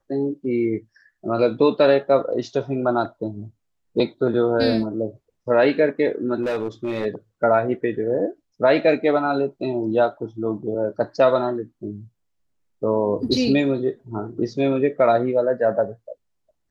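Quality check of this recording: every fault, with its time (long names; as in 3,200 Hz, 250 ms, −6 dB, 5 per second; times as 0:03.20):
0:06.42–0:07.06: clipping −20 dBFS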